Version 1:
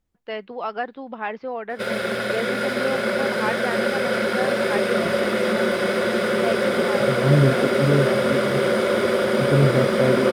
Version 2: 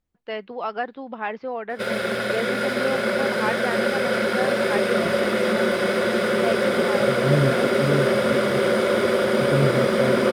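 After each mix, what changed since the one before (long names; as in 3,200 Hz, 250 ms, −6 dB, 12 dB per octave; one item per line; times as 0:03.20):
second voice −4.0 dB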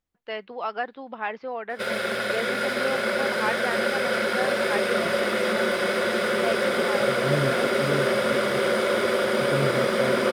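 master: add low-shelf EQ 420 Hz −7.5 dB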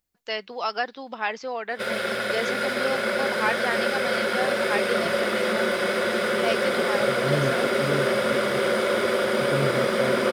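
first voice: remove high-frequency loss of the air 410 metres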